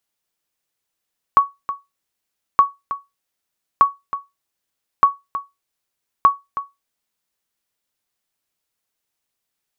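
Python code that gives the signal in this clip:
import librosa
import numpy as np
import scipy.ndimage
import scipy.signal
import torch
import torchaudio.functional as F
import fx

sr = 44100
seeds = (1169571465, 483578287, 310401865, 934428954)

y = fx.sonar_ping(sr, hz=1120.0, decay_s=0.2, every_s=1.22, pings=5, echo_s=0.32, echo_db=-13.0, level_db=-3.0)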